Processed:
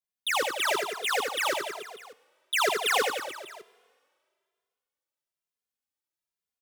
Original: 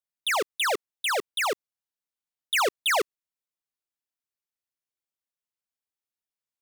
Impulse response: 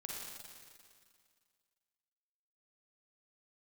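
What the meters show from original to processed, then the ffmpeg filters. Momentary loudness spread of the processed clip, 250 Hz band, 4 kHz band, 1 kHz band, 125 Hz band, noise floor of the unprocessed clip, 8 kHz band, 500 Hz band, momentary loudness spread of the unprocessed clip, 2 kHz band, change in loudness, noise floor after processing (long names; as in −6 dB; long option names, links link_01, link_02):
16 LU, −0.5 dB, −0.5 dB, −0.5 dB, can't be measured, below −85 dBFS, −0.5 dB, −0.5 dB, 5 LU, −0.5 dB, −1.0 dB, below −85 dBFS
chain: -filter_complex "[0:a]aecho=1:1:80|176|291.2|429.4|595.3:0.631|0.398|0.251|0.158|0.1,asplit=2[link_01][link_02];[1:a]atrim=start_sample=2205[link_03];[link_02][link_03]afir=irnorm=-1:irlink=0,volume=-19dB[link_04];[link_01][link_04]amix=inputs=2:normalize=0,asplit=2[link_05][link_06];[link_06]adelay=2.5,afreqshift=1.1[link_07];[link_05][link_07]amix=inputs=2:normalize=1"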